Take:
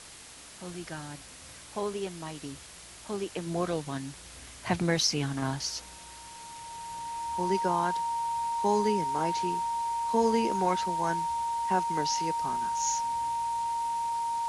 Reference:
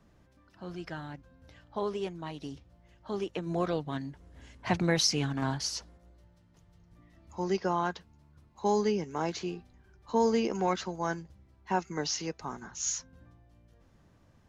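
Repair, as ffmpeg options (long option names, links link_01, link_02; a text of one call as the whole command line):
ffmpeg -i in.wav -af "bandreject=frequency=930:width=30,afwtdn=0.005" out.wav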